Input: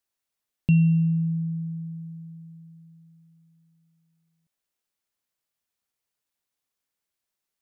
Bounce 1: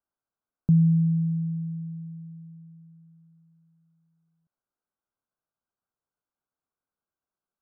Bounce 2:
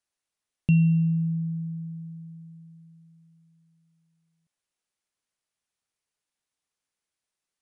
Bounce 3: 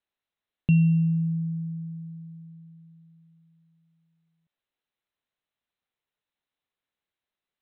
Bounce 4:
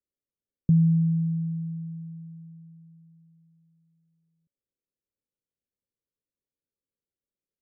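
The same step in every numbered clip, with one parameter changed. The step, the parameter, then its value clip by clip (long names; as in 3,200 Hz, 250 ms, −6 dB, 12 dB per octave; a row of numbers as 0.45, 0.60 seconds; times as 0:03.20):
Chebyshev low-pass filter, frequency: 1,600, 11,000, 4,100, 580 Hertz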